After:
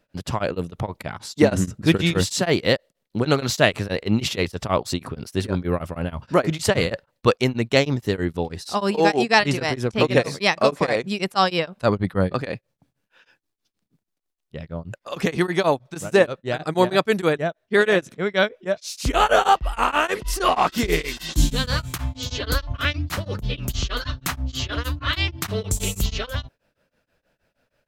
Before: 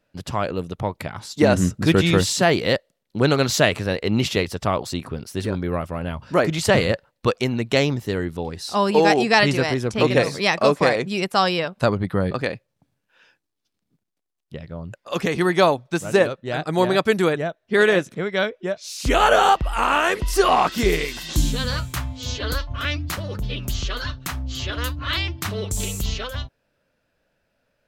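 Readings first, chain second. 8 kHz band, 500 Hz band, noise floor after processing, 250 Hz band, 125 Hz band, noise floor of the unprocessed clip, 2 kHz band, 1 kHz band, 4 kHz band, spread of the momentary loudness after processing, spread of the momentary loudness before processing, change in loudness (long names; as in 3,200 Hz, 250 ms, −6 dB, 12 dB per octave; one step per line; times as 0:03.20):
−1.0 dB, −1.0 dB, −78 dBFS, −1.0 dB, −0.5 dB, −76 dBFS, −1.0 dB, −1.5 dB, −0.5 dB, 10 LU, 12 LU, −1.0 dB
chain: in parallel at +0.5 dB: speech leveller within 3 dB 0.5 s
on the sum: tremolo along a rectified sine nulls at 6.3 Hz
level −4 dB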